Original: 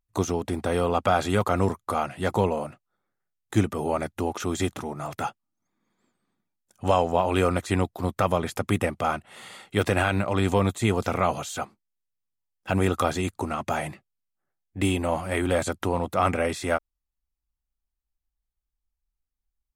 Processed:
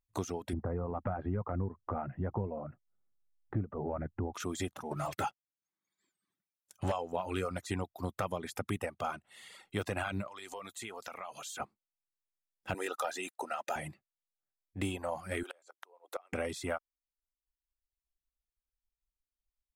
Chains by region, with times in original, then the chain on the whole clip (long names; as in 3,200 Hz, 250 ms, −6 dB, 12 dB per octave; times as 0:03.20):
0:00.53–0:04.34: low-pass filter 1,900 Hz 24 dB per octave + spectral tilt −3.5 dB per octave + downward compressor 1.5 to 1, threshold −26 dBFS
0:04.91–0:06.92: notch comb filter 240 Hz + leveller curve on the samples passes 2 + one half of a high-frequency compander encoder only
0:10.27–0:11.60: high-pass filter 940 Hz 6 dB per octave + downward compressor 4 to 1, threshold −32 dBFS
0:12.74–0:13.76: high-pass filter 540 Hz + leveller curve on the samples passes 1 + notch comb filter 1,100 Hz
0:15.43–0:16.33: Butterworth high-pass 380 Hz + gate with flip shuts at −18 dBFS, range −25 dB
whole clip: reverb reduction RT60 1 s; downward compressor 2.5 to 1, threshold −26 dBFS; level −6.5 dB